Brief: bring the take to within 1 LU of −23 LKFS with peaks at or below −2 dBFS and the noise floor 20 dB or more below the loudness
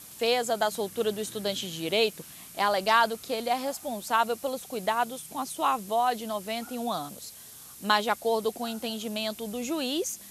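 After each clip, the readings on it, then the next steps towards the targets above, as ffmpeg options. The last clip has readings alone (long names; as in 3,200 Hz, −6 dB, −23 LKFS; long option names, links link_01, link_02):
background noise floor −47 dBFS; target noise floor −49 dBFS; integrated loudness −28.5 LKFS; sample peak −8.0 dBFS; target loudness −23.0 LKFS
→ -af "afftdn=noise_reduction=6:noise_floor=-47"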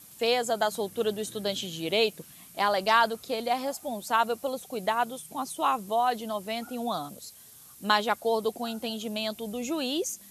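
background noise floor −51 dBFS; integrated loudness −29.0 LKFS; sample peak −8.5 dBFS; target loudness −23.0 LKFS
→ -af "volume=6dB"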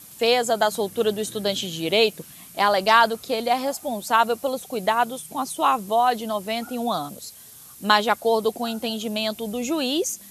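integrated loudness −23.0 LKFS; sample peak −2.5 dBFS; background noise floor −45 dBFS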